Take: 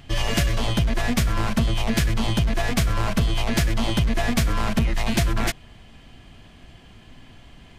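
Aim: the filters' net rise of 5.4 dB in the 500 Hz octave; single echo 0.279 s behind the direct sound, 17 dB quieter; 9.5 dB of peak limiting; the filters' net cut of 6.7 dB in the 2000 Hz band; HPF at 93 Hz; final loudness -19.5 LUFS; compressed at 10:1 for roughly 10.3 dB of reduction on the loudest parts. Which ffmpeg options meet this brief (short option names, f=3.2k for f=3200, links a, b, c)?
-af "highpass=93,equalizer=f=500:t=o:g=8,equalizer=f=2k:t=o:g=-9,acompressor=threshold=-27dB:ratio=10,alimiter=level_in=2dB:limit=-24dB:level=0:latency=1,volume=-2dB,aecho=1:1:279:0.141,volume=16dB"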